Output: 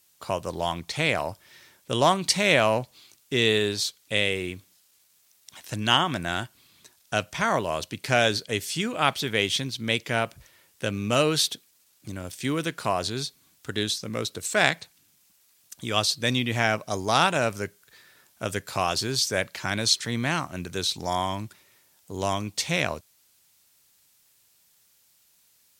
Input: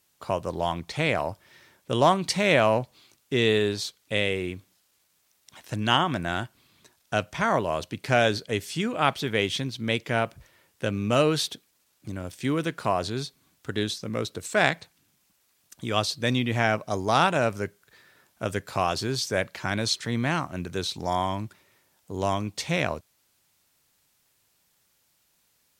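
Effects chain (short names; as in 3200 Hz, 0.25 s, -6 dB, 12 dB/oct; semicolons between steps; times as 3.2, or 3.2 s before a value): high shelf 2600 Hz +8.5 dB; gain -1.5 dB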